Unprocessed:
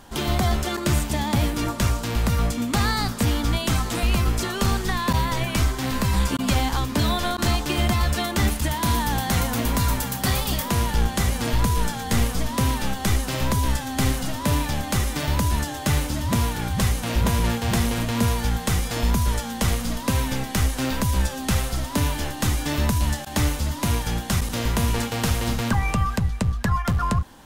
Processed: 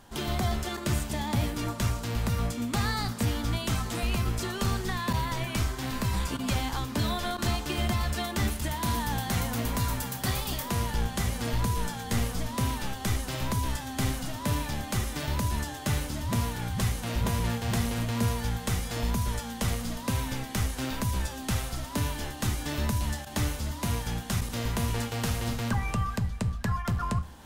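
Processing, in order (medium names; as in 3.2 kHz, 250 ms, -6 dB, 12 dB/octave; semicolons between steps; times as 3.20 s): reverse; upward compressor, threshold -38 dBFS; reverse; reverberation RT60 0.50 s, pre-delay 3 ms, DRR 11.5 dB; trim -7 dB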